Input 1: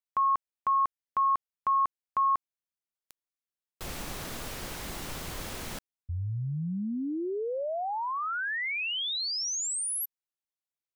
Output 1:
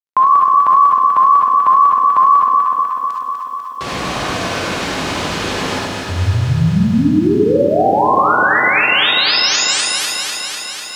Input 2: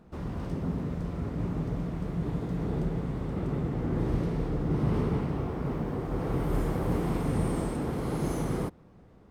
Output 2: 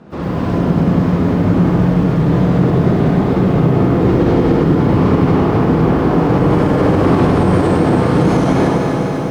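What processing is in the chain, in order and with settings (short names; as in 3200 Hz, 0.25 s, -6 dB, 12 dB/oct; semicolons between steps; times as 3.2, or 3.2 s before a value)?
vibrato 4 Hz 75 cents; on a send: echo with dull and thin repeats by turns 0.124 s, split 870 Hz, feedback 86%, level -4 dB; on the sum: non-linear reverb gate 90 ms rising, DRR -0.5 dB; companded quantiser 8-bit; BPF 110–5000 Hz; maximiser +18.5 dB; lo-fi delay 0.101 s, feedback 55%, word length 7-bit, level -9 dB; gain -3.5 dB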